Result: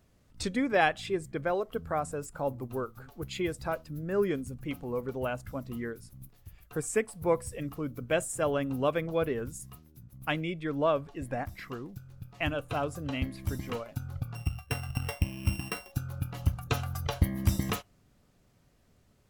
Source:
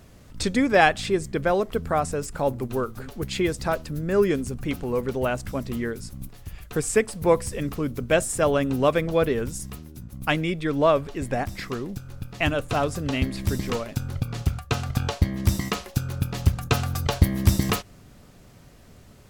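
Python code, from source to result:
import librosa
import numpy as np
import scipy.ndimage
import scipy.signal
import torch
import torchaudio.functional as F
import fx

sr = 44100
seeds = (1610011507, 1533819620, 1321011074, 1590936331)

y = fx.sample_sort(x, sr, block=16, at=(14.35, 15.92))
y = fx.noise_reduce_blind(y, sr, reduce_db=8)
y = y * librosa.db_to_amplitude(-7.5)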